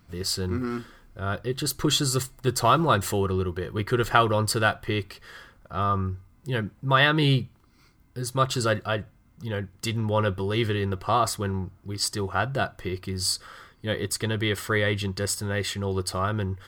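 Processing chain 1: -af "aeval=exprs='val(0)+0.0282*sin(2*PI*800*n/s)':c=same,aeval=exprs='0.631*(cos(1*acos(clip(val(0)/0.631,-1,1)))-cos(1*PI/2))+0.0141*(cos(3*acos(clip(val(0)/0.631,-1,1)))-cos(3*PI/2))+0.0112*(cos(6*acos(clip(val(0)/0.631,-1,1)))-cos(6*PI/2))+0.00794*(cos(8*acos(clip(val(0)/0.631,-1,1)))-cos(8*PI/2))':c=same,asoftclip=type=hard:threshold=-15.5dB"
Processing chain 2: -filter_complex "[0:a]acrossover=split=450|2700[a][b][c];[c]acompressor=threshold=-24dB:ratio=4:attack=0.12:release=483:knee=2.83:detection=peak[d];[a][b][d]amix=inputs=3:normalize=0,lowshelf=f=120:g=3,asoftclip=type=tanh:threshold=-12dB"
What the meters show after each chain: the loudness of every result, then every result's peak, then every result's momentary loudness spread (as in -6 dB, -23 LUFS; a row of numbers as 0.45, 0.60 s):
-26.5, -27.0 LUFS; -15.5, -12.0 dBFS; 10, 12 LU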